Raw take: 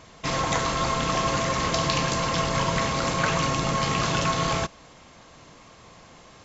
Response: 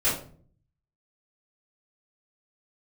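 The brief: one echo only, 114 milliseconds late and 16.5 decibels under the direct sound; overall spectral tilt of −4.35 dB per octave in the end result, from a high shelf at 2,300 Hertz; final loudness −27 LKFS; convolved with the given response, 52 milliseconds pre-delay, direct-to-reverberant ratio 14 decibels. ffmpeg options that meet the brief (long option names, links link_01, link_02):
-filter_complex "[0:a]highshelf=frequency=2300:gain=-3,aecho=1:1:114:0.15,asplit=2[link_01][link_02];[1:a]atrim=start_sample=2205,adelay=52[link_03];[link_02][link_03]afir=irnorm=-1:irlink=0,volume=-26.5dB[link_04];[link_01][link_04]amix=inputs=2:normalize=0,volume=-2dB"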